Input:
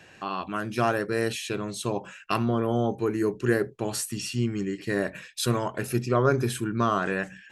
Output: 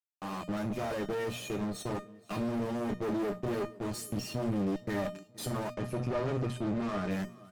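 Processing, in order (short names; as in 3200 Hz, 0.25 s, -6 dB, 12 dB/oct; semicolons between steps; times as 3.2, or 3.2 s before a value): per-bin expansion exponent 1.5; fuzz box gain 45 dB, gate -43 dBFS; HPF 130 Hz 12 dB/oct; tilt shelf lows +10 dB, about 690 Hz; notches 60/120/180/240 Hz; resonator 610 Hz, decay 0.29 s, mix 90%; feedback echo 0.473 s, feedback 45%, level -23.5 dB; one-sided clip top -37 dBFS; 5.74–7.11 air absorption 58 m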